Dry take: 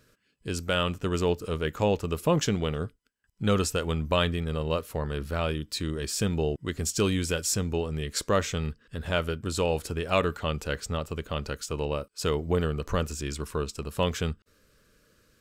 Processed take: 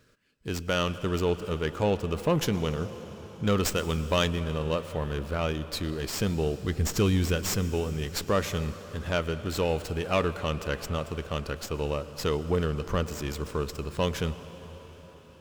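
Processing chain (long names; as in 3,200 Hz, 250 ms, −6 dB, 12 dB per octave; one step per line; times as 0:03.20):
0:06.62–0:07.50: low-shelf EQ 120 Hz +11 dB
convolution reverb RT60 5.8 s, pre-delay 100 ms, DRR 12.5 dB
soft clipping −13.5 dBFS, distortion −23 dB
0:03.65–0:04.28: high-shelf EQ 3,800 Hz +6 dB
windowed peak hold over 3 samples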